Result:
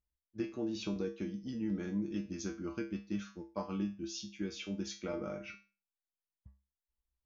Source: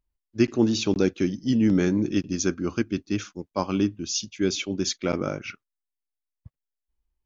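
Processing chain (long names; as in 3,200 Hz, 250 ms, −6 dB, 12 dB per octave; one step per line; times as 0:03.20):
high-shelf EQ 4,900 Hz −11.5 dB
downward compressor, threshold −24 dBFS, peak gain reduction 9.5 dB
tuned comb filter 67 Hz, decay 0.32 s, harmonics odd, mix 90%
level +1 dB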